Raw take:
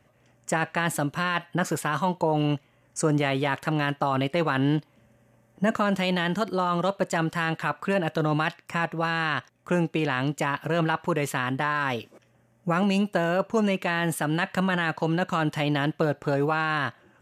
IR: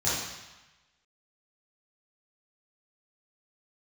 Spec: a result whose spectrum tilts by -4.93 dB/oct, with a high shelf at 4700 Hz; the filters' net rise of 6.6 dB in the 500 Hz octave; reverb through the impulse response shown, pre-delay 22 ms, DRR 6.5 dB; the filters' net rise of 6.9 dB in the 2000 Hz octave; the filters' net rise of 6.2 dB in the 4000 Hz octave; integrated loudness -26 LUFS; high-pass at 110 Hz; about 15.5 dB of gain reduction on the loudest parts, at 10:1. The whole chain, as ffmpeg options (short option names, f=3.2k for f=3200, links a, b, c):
-filter_complex "[0:a]highpass=110,equalizer=f=500:t=o:g=7.5,equalizer=f=2k:t=o:g=8,equalizer=f=4k:t=o:g=8,highshelf=f=4.7k:g=-7.5,acompressor=threshold=-30dB:ratio=10,asplit=2[a][b];[1:a]atrim=start_sample=2205,adelay=22[c];[b][c]afir=irnorm=-1:irlink=0,volume=-17.5dB[d];[a][d]amix=inputs=2:normalize=0,volume=8dB"